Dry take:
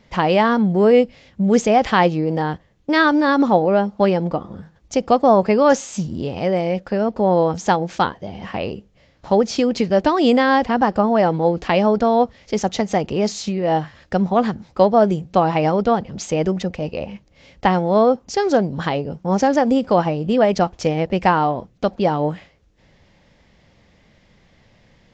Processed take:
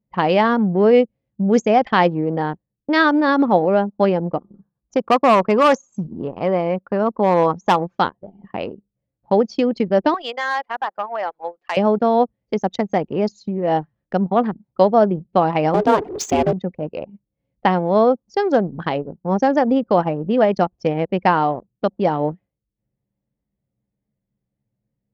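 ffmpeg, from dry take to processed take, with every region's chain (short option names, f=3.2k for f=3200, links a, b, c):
-filter_complex "[0:a]asettb=1/sr,asplit=3[a][b][c];[a]atrim=end=4.544[d];[b]atrim=start=4.54:end=7.98,asetpts=PTS-STARTPTS,afade=t=in:d=0.004:c=qsin,afade=t=out:st=3.436:d=0.004:c=qsin,equalizer=f=1.1k:t=o:w=0.49:g=10.5,asoftclip=type=hard:threshold=-8.5dB[e];[c]atrim=start=7.976[f];[d][e]acrossfade=d=0.004:c1=hsin:c2=qsin[g];[g][f]acrossfade=d=0.004:c1=qsin:c2=hsin,asettb=1/sr,asplit=3[h][i][j];[h]atrim=end=10.144[k];[i]atrim=start=10.14:end=11.77,asetpts=PTS-STARTPTS,afade=t=in:d=0.004:c=qsin,afade=t=out:st=1.626:d=0.004:c=qsin,highpass=960,asoftclip=type=hard:threshold=-15dB[l];[j]atrim=start=11.766[m];[k][l]acrossfade=d=0.004:c1=hsin:c2=qsin[n];[n][m]acrossfade=d=0.004:c1=qsin:c2=hsin,asettb=1/sr,asplit=3[o][p][q];[o]atrim=end=15.744[r];[p]atrim=start=15.74:end=16.53,asetpts=PTS-STARTPTS,afade=t=in:d=0.004:c=qsin,afade=t=out:st=0.786:d=0.004:c=qsin,aeval=exprs='val(0)+0.5*0.0447*sgn(val(0))':c=same,aeval=exprs='val(0)*sin(2*PI*220*n/s)':c=same,acontrast=35[s];[q]atrim=start=16.526[t];[r][s]acrossfade=d=0.004:c1=hsin:c2=qsin[u];[u][t]acrossfade=d=0.004:c1=qsin:c2=hsin,highpass=140,anlmdn=1000"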